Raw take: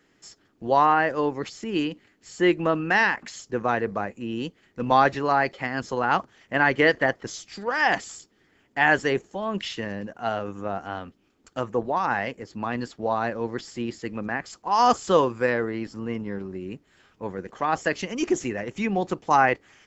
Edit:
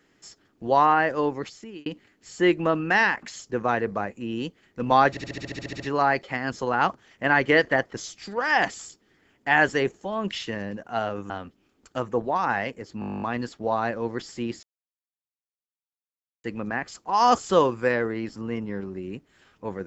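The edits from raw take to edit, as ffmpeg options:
-filter_complex "[0:a]asplit=25[a][b][c][d][e][f][g][h][i][j][k][l][m][n][o][p][q][r][s][t][u][v][w][x][y];[a]atrim=end=1.86,asetpts=PTS-STARTPTS,afade=t=out:st=1.33:d=0.53[z];[b]atrim=start=1.86:end=5.172,asetpts=PTS-STARTPTS,afade=t=in:d=0.004:c=hsin[aa];[c]atrim=start=5.098:end=5.172[ab];[d]atrim=start=5.098:end=5.172[ac];[e]atrim=start=5.098:end=5.172[ad];[f]atrim=start=5.098:end=5.172[ae];[g]atrim=start=5.098:end=5.172[af];[h]atrim=start=5.098:end=5.172[ag];[i]atrim=start=5.098:end=5.172[ah];[j]atrim=start=5.098:end=5.172[ai];[k]atrim=start=5.098:end=5.172[aj];[l]atrim=start=5.098:end=10.602[ak];[m]atrim=start=10.908:end=12.632[al];[n]atrim=start=12.608:end=12.632[am];[o]atrim=start=12.608:end=12.632[an];[p]atrim=start=12.608:end=12.632[ao];[q]atrim=start=12.608:end=12.632[ap];[r]atrim=start=12.608:end=12.632[aq];[s]atrim=start=12.608:end=12.632[ar];[t]atrim=start=12.608:end=12.632[as];[u]atrim=start=12.608:end=12.632[at];[v]atrim=start=12.608:end=12.632[au];[w]atrim=start=12.608:end=12.632[av];[x]atrim=start=12.608:end=14.02,asetpts=PTS-STARTPTS,afade=t=out:st=1.408:d=0.004:c=hsin,apad=pad_dur=1.81[aw];[y]atrim=start=14.02,asetpts=PTS-STARTPTS,afade=t=in:d=0.004:c=hsin[ax];[z][aa]concat=n=2:v=0:a=1[ay];[ay][ab]acrossfade=d=0.004:c1=hsin:c2=hsin[az];[az][ac]acrossfade=d=0.004:c1=hsin:c2=hsin[ba];[ba][ad]acrossfade=d=0.004:c1=hsin:c2=hsin[bb];[bb][ae]acrossfade=d=0.004:c1=hsin:c2=hsin[bc];[bc][af]acrossfade=d=0.004:c1=hsin:c2=hsin[bd];[bd][ag]acrossfade=d=0.004:c1=hsin:c2=hsin[be];[be][ah]acrossfade=d=0.004:c1=hsin:c2=hsin[bf];[bf][ai]acrossfade=d=0.004:c1=hsin:c2=hsin[bg];[bg][aj]acrossfade=d=0.004:c1=hsin:c2=hsin[bh];[bh][ak]acrossfade=d=0.004:c1=hsin:c2=hsin[bi];[bi][al]acrossfade=d=0.004:c1=hsin:c2=hsin[bj];[bj][am]acrossfade=d=0.004:c1=hsin:c2=hsin[bk];[bk][an]acrossfade=d=0.004:c1=hsin:c2=hsin[bl];[bl][ao]acrossfade=d=0.004:c1=hsin:c2=hsin[bm];[bm][ap]acrossfade=d=0.004:c1=hsin:c2=hsin[bn];[bn][aq]acrossfade=d=0.004:c1=hsin:c2=hsin[bo];[bo][ar]acrossfade=d=0.004:c1=hsin:c2=hsin[bp];[bp][as]acrossfade=d=0.004:c1=hsin:c2=hsin[bq];[bq][at]acrossfade=d=0.004:c1=hsin:c2=hsin[br];[br][au]acrossfade=d=0.004:c1=hsin:c2=hsin[bs];[bs][av]acrossfade=d=0.004:c1=hsin:c2=hsin[bt];[aw][ax]concat=n=2:v=0:a=1[bu];[bt][bu]acrossfade=d=0.004:c1=hsin:c2=hsin"

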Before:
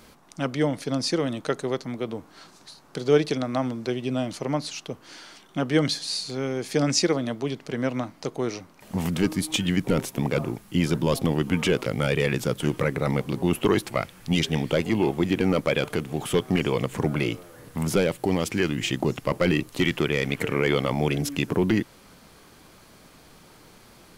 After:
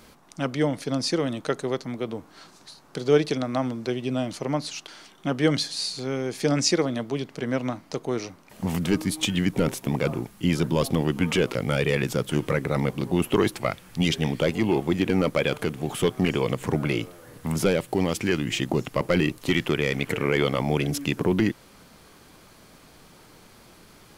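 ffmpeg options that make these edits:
-filter_complex "[0:a]asplit=2[a][b];[a]atrim=end=4.882[c];[b]atrim=start=5.188[d];[c][d]acrossfade=d=0.004:c1=hsin:c2=hsin"

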